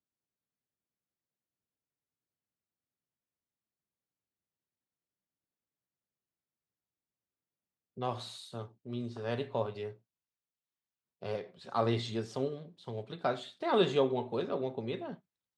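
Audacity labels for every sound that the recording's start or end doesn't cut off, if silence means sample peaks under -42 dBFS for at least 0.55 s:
7.980000	9.910000	sound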